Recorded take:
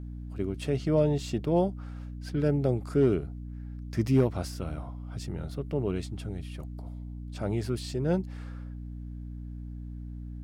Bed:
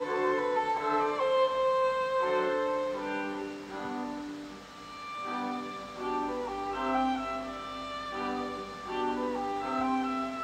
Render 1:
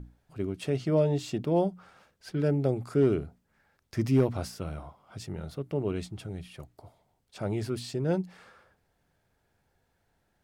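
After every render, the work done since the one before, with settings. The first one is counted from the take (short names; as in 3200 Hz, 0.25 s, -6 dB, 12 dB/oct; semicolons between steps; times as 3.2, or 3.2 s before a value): notches 60/120/180/240/300 Hz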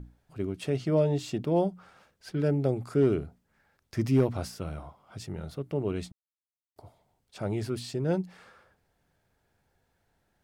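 6.12–6.76 mute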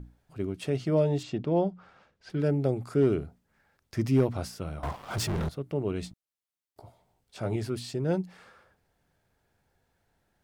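1.23–2.3 air absorption 110 m; 4.83–5.49 sample leveller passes 5; 6.01–7.56 doubler 17 ms -6 dB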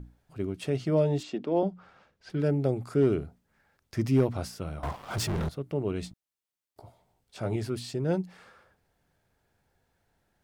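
1.2–1.63 HPF 210 Hz 24 dB/oct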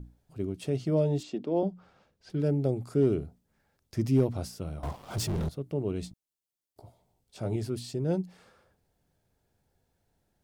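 bell 1600 Hz -8 dB 2 oct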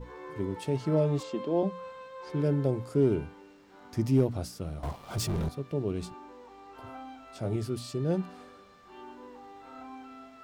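add bed -15.5 dB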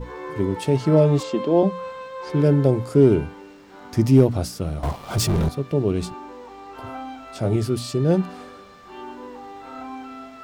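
gain +10 dB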